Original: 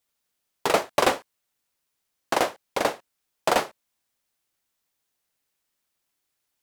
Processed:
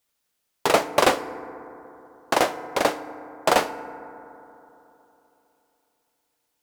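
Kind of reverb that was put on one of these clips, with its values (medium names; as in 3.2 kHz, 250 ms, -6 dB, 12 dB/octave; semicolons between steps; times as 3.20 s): FDN reverb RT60 3.3 s, high-frequency decay 0.25×, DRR 12.5 dB; trim +2.5 dB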